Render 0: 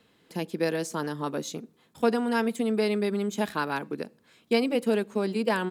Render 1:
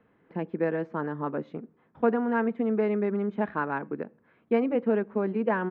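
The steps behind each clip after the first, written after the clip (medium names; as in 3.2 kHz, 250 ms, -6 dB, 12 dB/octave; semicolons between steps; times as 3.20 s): low-pass 1.9 kHz 24 dB/octave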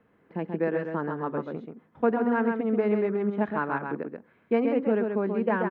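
delay 133 ms -5 dB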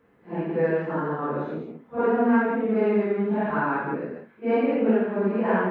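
phase randomisation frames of 200 ms; trim +3.5 dB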